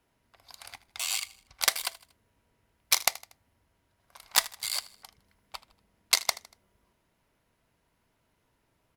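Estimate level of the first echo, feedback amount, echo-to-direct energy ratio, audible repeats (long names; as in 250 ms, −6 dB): −19.0 dB, 44%, −18.0 dB, 3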